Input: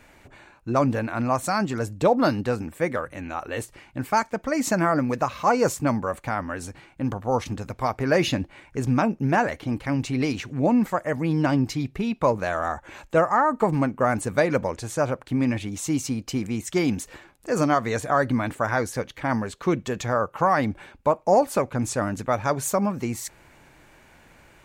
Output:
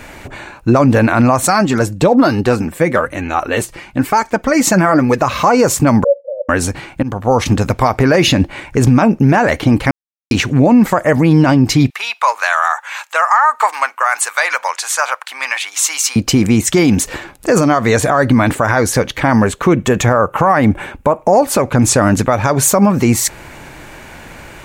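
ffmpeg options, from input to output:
-filter_complex "[0:a]asettb=1/sr,asplit=3[a][b][c];[a]atrim=end=1.474[d];[b]atrim=start=1.47:end=5.23,asetpts=PTS-STARTPTS,afade=t=in:d=0.004:c=qsin,afade=t=out:st=3.756:d=0.004:c=qsin,flanger=delay=2.3:depth=3.7:regen=50:speed=1.1:shape=sinusoidal[e];[c]atrim=start=5.226[f];[d][e]acrossfade=d=0.004:c1=hsin:c2=qsin[g];[g][f]acrossfade=d=0.004:c1=qsin:c2=hsin,asettb=1/sr,asplit=3[h][i][j];[h]atrim=end=6.044[k];[i]atrim=start=6.04:end=6.49,asetpts=PTS-STARTPTS,afade=t=in:d=0.004:c=qsin,afade=t=out:st=0.446:d=0.004:c=qsin,asuperpass=centerf=540:order=8:qfactor=5[l];[j]atrim=start=6.486[m];[k][l]acrossfade=d=0.004:c1=hsin:c2=qsin[n];[n][m]acrossfade=d=0.004:c1=qsin:c2=hsin,asettb=1/sr,asplit=3[o][p][q];[o]atrim=end=11.904[r];[p]atrim=start=11.9:end=16.16,asetpts=PTS-STARTPTS,afade=t=in:d=0.004:c=qsin,afade=t=out:st=4.256:d=0.004:c=qsin,highpass=f=960:w=0.5412,highpass=f=960:w=1.3066[s];[q]atrim=start=16.156[t];[r][s]acrossfade=d=0.004:c1=hsin:c2=qsin[u];[u][t]acrossfade=d=0.004:c1=qsin:c2=hsin,asettb=1/sr,asplit=3[v][w][x];[v]atrim=end=19.444[y];[w]atrim=start=19.44:end=21.33,asetpts=PTS-STARTPTS,afade=t=in:d=0.004:c=qsin,afade=t=out:st=1.886:d=0.004:c=qsin,equalizer=f=4.6k:w=1.7:g=-9[z];[x]atrim=start=21.326[aa];[y][z]acrossfade=d=0.004:c1=hsin:c2=qsin[ab];[ab][aa]acrossfade=d=0.004:c1=qsin:c2=hsin,asplit=4[ac][ad][ae][af];[ac]atrim=end=7.03,asetpts=PTS-STARTPTS,afade=t=out:st=7.026:d=0.004:c=hsin:silence=0.1[ag];[ad]atrim=start=7.03:end=9.91,asetpts=PTS-STARTPTS,afade=t=in:d=0.66:c=qsin:silence=0.1,afade=t=out:st=2.876:d=0.004:c=hsin[ah];[ae]atrim=start=9.91:end=10.31,asetpts=PTS-STARTPTS,volume=0[ai];[af]atrim=start=10.31,asetpts=PTS-STARTPTS,afade=t=in:d=0.004:c=hsin[aj];[ag][ah][ai][aj]concat=n=4:v=0:a=1,acompressor=threshold=-22dB:ratio=6,alimiter=level_in=19.5dB:limit=-1dB:release=50:level=0:latency=1,volume=-1dB"

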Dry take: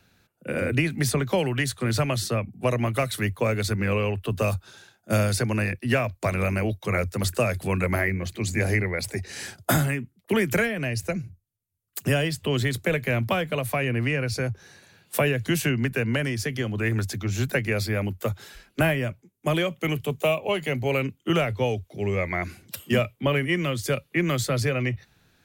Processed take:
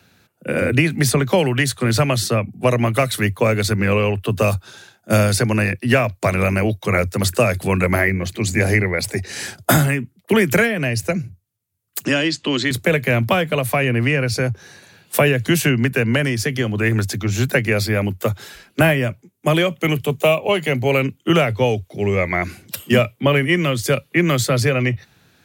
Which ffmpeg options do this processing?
-filter_complex "[0:a]asettb=1/sr,asplit=3[a][b][c];[a]atrim=end=12.054[d];[b]atrim=start=12.05:end=12.71,asetpts=PTS-STARTPTS,afade=t=in:d=0.004:c=qsin,afade=t=out:st=0.656:d=0.004:c=qsin,highpass=260,equalizer=f=310:t=q:w=4:g=9,equalizer=f=430:t=q:w=4:g=-8,equalizer=f=690:t=q:w=4:g=-7,equalizer=f=4.2k:t=q:w=4:g=6,equalizer=f=6.8k:t=q:w=4:g=4,lowpass=f=7k:w=0.5412,lowpass=f=7k:w=1.3066[e];[c]atrim=start=12.706[f];[d][e]acrossfade=d=0.004:c1=hsin:c2=qsin[g];[g][f]acrossfade=d=0.004:c1=qsin:c2=hsin,highpass=81,volume=7.5dB"

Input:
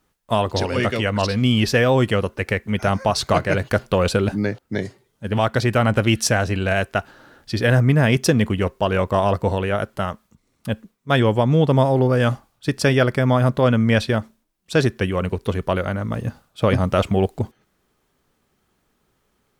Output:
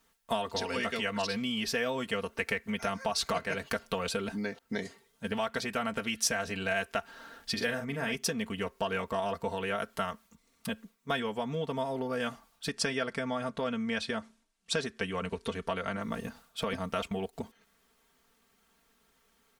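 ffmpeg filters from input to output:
-filter_complex "[0:a]asettb=1/sr,asplit=3[a][b][c];[a]atrim=end=7.534[d];[b]atrim=start=7.53:end=8.15,asetpts=PTS-STARTPTS,afade=t=in:d=0.004:c=qsin,afade=t=out:st=0.616:d=0.004:c=qsin,asplit=2[e][f];[f]adelay=43,volume=-7.5dB[g];[e][g]amix=inputs=2:normalize=0,atrim=end_sample=27342[h];[c]atrim=start=8.146[i];[d][h]acrossfade=d=0.004:c1=hsin:c2=qsin[j];[j][i]acrossfade=d=0.004:c1=qsin:c2=hsin,asettb=1/sr,asplit=3[k][l][m];[k]atrim=end=12.694[n];[l]atrim=start=12.69:end=16.01,asetpts=PTS-STARTPTS,afade=t=in:d=0.004:c=qsin,afade=t=out:st=3.316:d=0.004:c=qsin,lowpass=f=10k:w=0.5412,lowpass=f=10k:w=1.3066[o];[m]atrim=start=16.006[p];[n][o]acrossfade=d=0.004:c1=hsin:c2=qsin[q];[q][p]acrossfade=d=0.004:c1=qsin:c2=hsin,asettb=1/sr,asplit=3[r][s][t];[r]atrim=end=16.694[u];[s]atrim=start=16.69:end=17.33,asetpts=PTS-STARTPTS,afade=t=in:d=0.004:c=qsin,afade=t=out:st=0.636:d=0.004:c=qsin,agate=range=-7dB:threshold=-31dB:ratio=16:release=100:detection=peak[v];[t]atrim=start=17.326[w];[u][v]acrossfade=d=0.004:c1=hsin:c2=qsin[x];[x][w]acrossfade=d=0.004:c1=qsin:c2=hsin,acompressor=threshold=-26dB:ratio=6,tiltshelf=f=670:g=-4.5,aecho=1:1:4.4:0.74,volume=-4.5dB"

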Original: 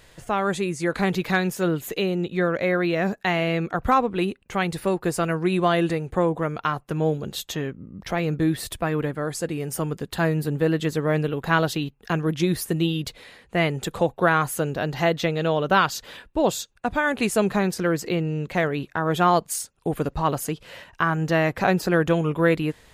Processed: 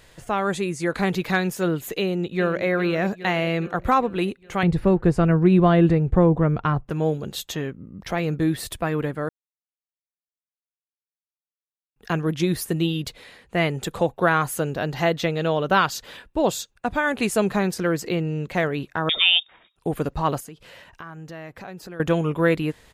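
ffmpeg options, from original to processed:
-filter_complex "[0:a]asplit=2[a][b];[b]afade=t=in:st=1.96:d=0.01,afade=t=out:st=2.65:d=0.01,aecho=0:1:410|820|1230|1640|2050|2460|2870:0.251189|0.150713|0.0904279|0.0542567|0.032554|0.0195324|0.0117195[c];[a][c]amix=inputs=2:normalize=0,asettb=1/sr,asplit=3[d][e][f];[d]atrim=end=4.634[g];[e]atrim=start=4.63:end=6.9,asetpts=PTS-STARTPTS,afade=t=in:d=0.004:c=qsin,afade=t=out:st=2.266:d=0.004:c=qsin,aemphasis=mode=reproduction:type=riaa[h];[f]atrim=start=6.896[i];[g][h]acrossfade=d=0.004:c1=hsin:c2=qsin[j];[j][i]acrossfade=d=0.004:c1=qsin:c2=hsin,asettb=1/sr,asplit=3[k][l][m];[k]atrim=end=19.094[n];[l]atrim=start=19.09:end=19.76,asetpts=PTS-STARTPTS,afade=t=in:d=0.004:c=qsin,afade=t=out:st=0.666:d=0.004:c=qsin,lowpass=f=3.2k:t=q:w=0.5098,lowpass=f=3.2k:t=q:w=0.6013,lowpass=f=3.2k:t=q:w=0.9,lowpass=f=3.2k:t=q:w=2.563,afreqshift=-3800[o];[m]atrim=start=19.756[p];[n][o]acrossfade=d=0.004:c1=hsin:c2=qsin[q];[q][p]acrossfade=d=0.004:c1=qsin:c2=hsin,asettb=1/sr,asplit=3[r][s][t];[r]atrim=end=20.404[u];[s]atrim=start=20.4:end=22,asetpts=PTS-STARTPTS,afade=t=in:d=0.004:c=qsin,afade=t=out:st=1.596:d=0.004:c=qsin,acompressor=threshold=-43dB:ratio=2.5:attack=3.2:release=140:knee=1:detection=peak[v];[t]atrim=start=21.996[w];[u][v]acrossfade=d=0.004:c1=hsin:c2=qsin[x];[x][w]acrossfade=d=0.004:c1=qsin:c2=hsin,asplit=3[y][z][aa];[y]atrim=end=9.29,asetpts=PTS-STARTPTS,afade=t=out:st=9.286:d=0.004:c=hsin[ab];[z]atrim=start=9.29:end=11.96,asetpts=PTS-STARTPTS,volume=0[ac];[aa]atrim=start=11.96,asetpts=PTS-STARTPTS,afade=t=in:d=0.004:c=hsin[ad];[ab][ac][ad]concat=n=3:v=0:a=1"

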